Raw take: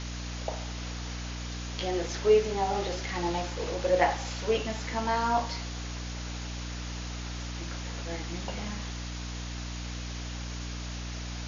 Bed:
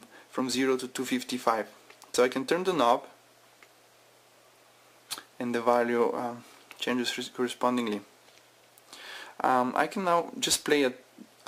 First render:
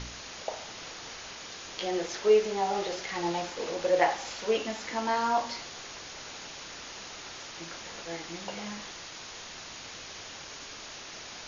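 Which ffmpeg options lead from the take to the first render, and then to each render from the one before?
-af "bandreject=f=60:t=h:w=4,bandreject=f=120:t=h:w=4,bandreject=f=180:t=h:w=4,bandreject=f=240:t=h:w=4,bandreject=f=300:t=h:w=4"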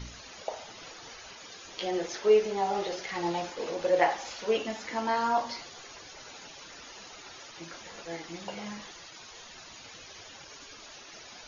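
-af "afftdn=nr=11:nf=-44"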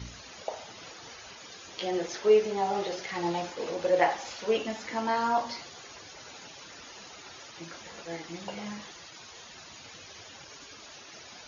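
-af "highpass=79,lowshelf=f=120:g=7"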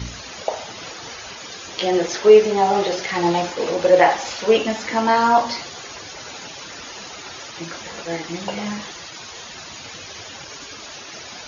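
-af "volume=3.76,alimiter=limit=0.891:level=0:latency=1"

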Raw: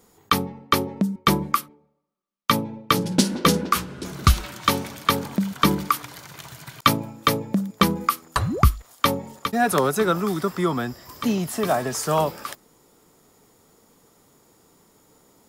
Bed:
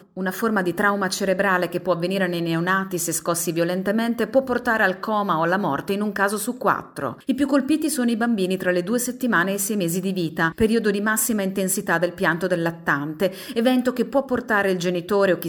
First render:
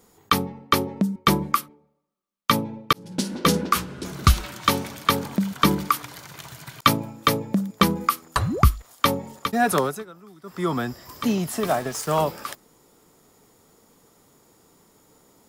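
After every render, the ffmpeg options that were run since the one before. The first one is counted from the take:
-filter_complex "[0:a]asettb=1/sr,asplit=3[s0][s1][s2];[s0]atrim=end=11.604[s3];[s1]atrim=start=11.6:end=12.22,asetpts=PTS-STARTPTS,afade=t=in:d=0.004:c=qsin,afade=t=out:st=0.616:d=0.004:c=qsin,aeval=exprs='sgn(val(0))*max(abs(val(0))-0.015,0)':c=same[s4];[s2]atrim=start=12.216[s5];[s3][s4]acrossfade=d=0.004:c1=hsin:c2=qsin[s6];[s6][s5]acrossfade=d=0.004:c1=qsin:c2=hsin,asplit=4[s7][s8][s9][s10];[s7]atrim=end=2.93,asetpts=PTS-STARTPTS,afade=t=out:st=2.926:d=0.004:c=hsin[s11];[s8]atrim=start=2.93:end=10.05,asetpts=PTS-STARTPTS,afade=t=in:d=0.64,afade=t=out:st=6.82:d=0.3:silence=0.0707946[s12];[s9]atrim=start=10.05:end=10.43,asetpts=PTS-STARTPTS,volume=0.0708[s13];[s10]atrim=start=10.43,asetpts=PTS-STARTPTS,afade=t=in:d=0.3:silence=0.0707946[s14];[s11][s12][s13][s14]concat=n=4:v=0:a=1"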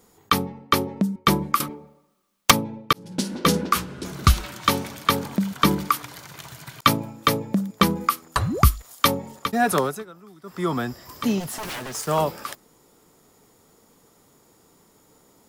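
-filter_complex "[0:a]asettb=1/sr,asplit=3[s0][s1][s2];[s0]atrim=end=1.604[s3];[s1]atrim=start=1.6:end=2.51,asetpts=PTS-STARTPTS,afade=t=in:d=0.004:c=qsin,afade=t=out:st=0.906:d=0.004:c=qsin,aeval=exprs='0.631*sin(PI/2*3.98*val(0)/0.631)':c=same[s4];[s2]atrim=start=2.506[s5];[s3][s4]acrossfade=d=0.004:c1=hsin:c2=qsin[s6];[s6][s5]acrossfade=d=0.004:c1=qsin:c2=hsin,asettb=1/sr,asplit=3[s7][s8][s9];[s7]atrim=end=8.554[s10];[s8]atrim=start=8.55:end=9.08,asetpts=PTS-STARTPTS,afade=t=in:d=0.004:c=qsin,afade=t=out:st=0.526:d=0.004:c=qsin,highshelf=f=4000:g=7.5[s11];[s9]atrim=start=9.076[s12];[s10][s11]acrossfade=d=0.004:c1=hsin:c2=qsin[s13];[s13][s12]acrossfade=d=0.004:c1=qsin:c2=hsin,asplit=3[s14][s15][s16];[s14]afade=t=out:st=11.39:d=0.02[s17];[s15]aeval=exprs='0.0473*(abs(mod(val(0)/0.0473+3,4)-2)-1)':c=same,afade=t=in:st=11.39:d=0.02,afade=t=out:st=11.92:d=0.02[s18];[s16]afade=t=in:st=11.92:d=0.02[s19];[s17][s18][s19]amix=inputs=3:normalize=0"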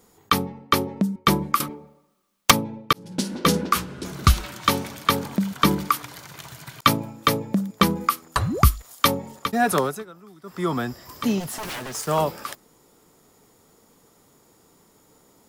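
-af anull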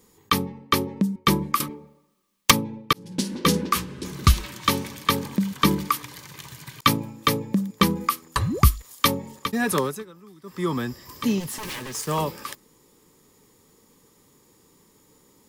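-af "equalizer=f=690:w=4.5:g=-14.5,bandreject=f=1400:w=5.8"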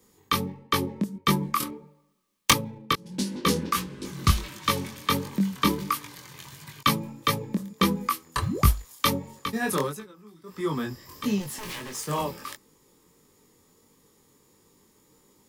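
-filter_complex "[0:a]flanger=delay=19.5:depth=4.2:speed=1.5,acrossover=split=110|1200[s0][s1][s2];[s0]acrusher=bits=5:mode=log:mix=0:aa=0.000001[s3];[s3][s1][s2]amix=inputs=3:normalize=0"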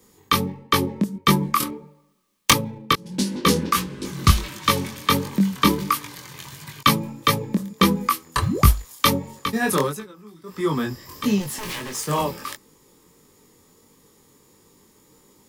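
-af "volume=1.88,alimiter=limit=0.891:level=0:latency=1"

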